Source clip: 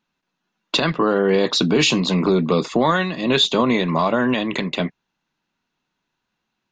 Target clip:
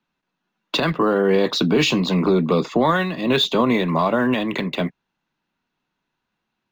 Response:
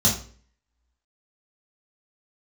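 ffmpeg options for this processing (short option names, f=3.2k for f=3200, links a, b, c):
-filter_complex "[0:a]highshelf=f=6k:g=-11,acrossover=split=150|380|1500[a][b][c][d];[d]acrusher=bits=6:mode=log:mix=0:aa=0.000001[e];[a][b][c][e]amix=inputs=4:normalize=0"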